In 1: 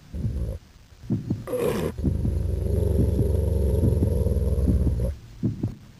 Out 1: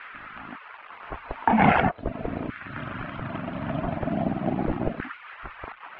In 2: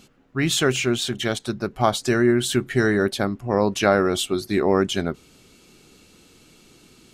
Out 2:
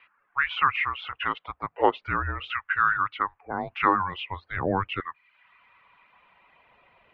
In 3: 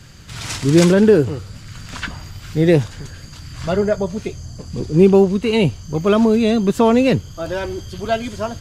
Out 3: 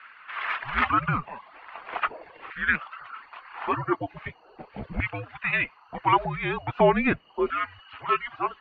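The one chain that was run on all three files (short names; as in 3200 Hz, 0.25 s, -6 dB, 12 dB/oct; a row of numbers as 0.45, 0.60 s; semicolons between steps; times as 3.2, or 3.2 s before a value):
LFO high-pass saw down 0.4 Hz 750–1800 Hz; dynamic EQ 930 Hz, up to -6 dB, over -36 dBFS, Q 2.2; reverb removal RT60 0.57 s; mistuned SSB -280 Hz 230–2900 Hz; match loudness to -27 LUFS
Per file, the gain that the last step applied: +16.0, -0.5, +0.5 dB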